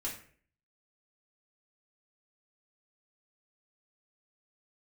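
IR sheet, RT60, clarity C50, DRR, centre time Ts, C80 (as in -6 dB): 0.50 s, 6.5 dB, -5.0 dB, 28 ms, 11.5 dB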